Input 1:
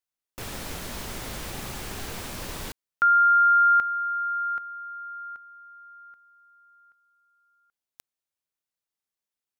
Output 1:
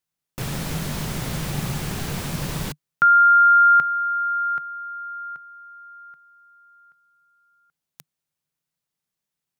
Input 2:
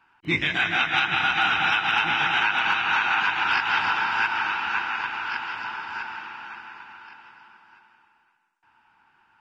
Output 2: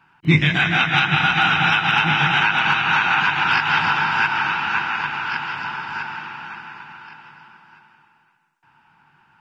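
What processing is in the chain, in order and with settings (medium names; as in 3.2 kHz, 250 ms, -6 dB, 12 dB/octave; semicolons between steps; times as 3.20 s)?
peaking EQ 150 Hz +15 dB 0.72 oct; trim +4.5 dB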